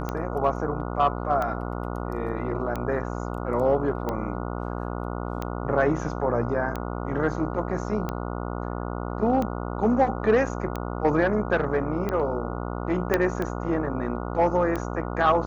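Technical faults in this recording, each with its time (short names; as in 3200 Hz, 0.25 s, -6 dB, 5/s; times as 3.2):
buzz 60 Hz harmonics 24 -31 dBFS
tick 45 rpm -16 dBFS
13.14 pop -8 dBFS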